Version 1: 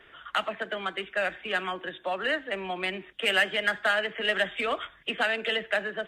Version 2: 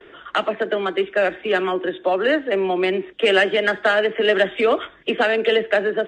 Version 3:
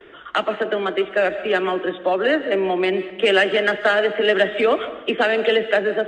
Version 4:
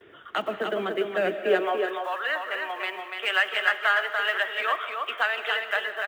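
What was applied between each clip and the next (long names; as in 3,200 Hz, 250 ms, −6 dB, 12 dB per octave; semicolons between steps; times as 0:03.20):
low-pass filter 7,600 Hz 24 dB per octave; noise gate with hold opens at −46 dBFS; parametric band 370 Hz +14 dB 1.5 octaves; level +4 dB
comb and all-pass reverb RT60 0.96 s, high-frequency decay 0.7×, pre-delay 100 ms, DRR 12.5 dB
one scale factor per block 7 bits; high-pass filter sweep 92 Hz → 1,100 Hz, 0:01.03–0:01.92; on a send: single-tap delay 290 ms −5 dB; on the sum: level −7.5 dB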